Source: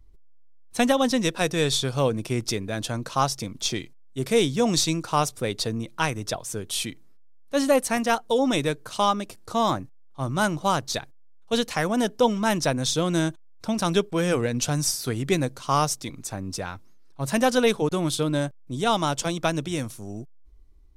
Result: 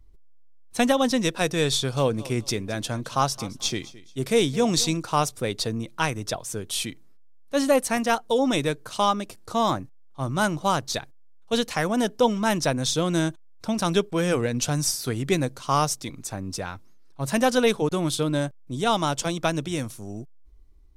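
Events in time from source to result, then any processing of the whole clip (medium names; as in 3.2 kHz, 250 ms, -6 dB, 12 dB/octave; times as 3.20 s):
1.75–4.97 s: feedback delay 217 ms, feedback 30%, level -19 dB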